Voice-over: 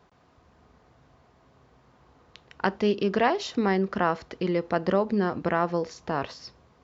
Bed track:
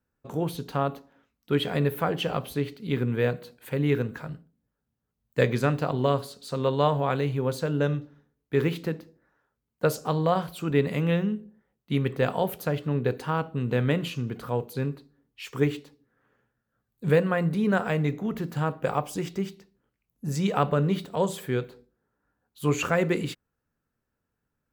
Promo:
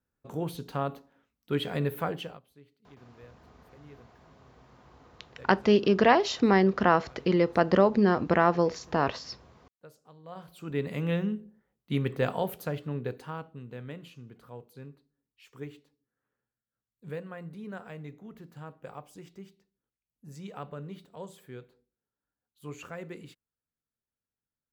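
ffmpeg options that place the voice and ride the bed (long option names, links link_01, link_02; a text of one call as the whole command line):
ffmpeg -i stem1.wav -i stem2.wav -filter_complex "[0:a]adelay=2850,volume=2.5dB[link_01];[1:a]volume=20.5dB,afade=type=out:start_time=2.06:duration=0.34:silence=0.0668344,afade=type=in:start_time=10.23:duration=1.04:silence=0.0562341,afade=type=out:start_time=12.23:duration=1.46:silence=0.199526[link_02];[link_01][link_02]amix=inputs=2:normalize=0" out.wav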